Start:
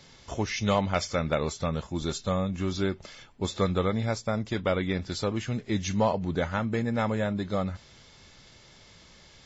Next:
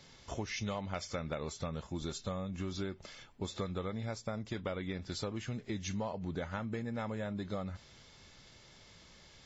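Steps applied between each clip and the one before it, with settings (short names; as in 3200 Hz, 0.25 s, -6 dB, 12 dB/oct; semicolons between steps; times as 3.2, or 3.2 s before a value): compressor, threshold -30 dBFS, peak gain reduction 10.5 dB; gain -4.5 dB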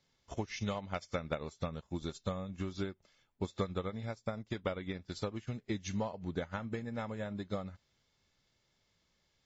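upward expander 2.5:1, over -49 dBFS; gain +5 dB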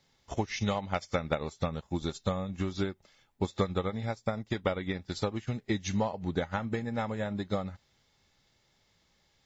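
small resonant body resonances 810/1900/3800 Hz, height 7 dB; gain +6 dB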